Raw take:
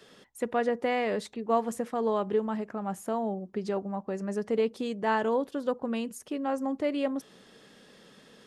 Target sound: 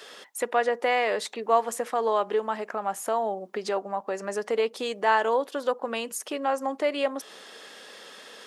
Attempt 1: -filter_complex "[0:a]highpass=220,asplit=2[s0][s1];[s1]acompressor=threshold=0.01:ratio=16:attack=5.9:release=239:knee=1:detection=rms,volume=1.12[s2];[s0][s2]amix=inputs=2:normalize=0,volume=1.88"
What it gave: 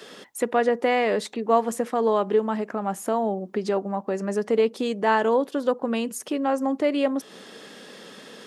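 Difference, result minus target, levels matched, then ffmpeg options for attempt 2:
250 Hz band +8.0 dB
-filter_complex "[0:a]highpass=570,asplit=2[s0][s1];[s1]acompressor=threshold=0.01:ratio=16:attack=5.9:release=239:knee=1:detection=rms,volume=1.12[s2];[s0][s2]amix=inputs=2:normalize=0,volume=1.88"

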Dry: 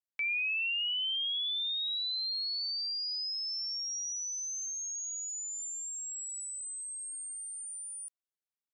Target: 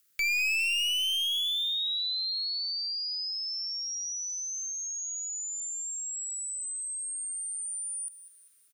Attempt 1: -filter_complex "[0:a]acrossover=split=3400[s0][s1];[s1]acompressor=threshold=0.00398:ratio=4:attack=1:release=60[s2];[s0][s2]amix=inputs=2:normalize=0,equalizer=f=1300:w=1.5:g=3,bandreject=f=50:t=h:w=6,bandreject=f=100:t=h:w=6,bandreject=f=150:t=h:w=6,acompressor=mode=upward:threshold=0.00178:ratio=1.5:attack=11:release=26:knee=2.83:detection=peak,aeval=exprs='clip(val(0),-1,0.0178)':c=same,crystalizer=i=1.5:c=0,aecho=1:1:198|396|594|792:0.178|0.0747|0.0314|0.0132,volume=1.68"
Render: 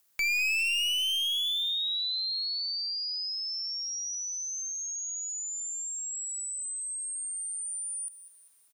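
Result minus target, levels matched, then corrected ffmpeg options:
1 kHz band +5.5 dB
-filter_complex "[0:a]acrossover=split=3400[s0][s1];[s1]acompressor=threshold=0.00398:ratio=4:attack=1:release=60[s2];[s0][s2]amix=inputs=2:normalize=0,asuperstop=centerf=800:order=20:qfactor=1.2,equalizer=f=1300:w=1.5:g=3,bandreject=f=50:t=h:w=6,bandreject=f=100:t=h:w=6,bandreject=f=150:t=h:w=6,acompressor=mode=upward:threshold=0.00178:ratio=1.5:attack=11:release=26:knee=2.83:detection=peak,aeval=exprs='clip(val(0),-1,0.0178)':c=same,crystalizer=i=1.5:c=0,aecho=1:1:198|396|594|792:0.178|0.0747|0.0314|0.0132,volume=1.68"

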